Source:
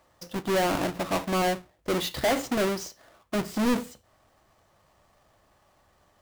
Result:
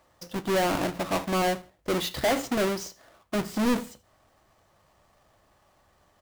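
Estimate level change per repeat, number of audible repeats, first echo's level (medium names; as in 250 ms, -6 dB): -9.5 dB, 2, -22.5 dB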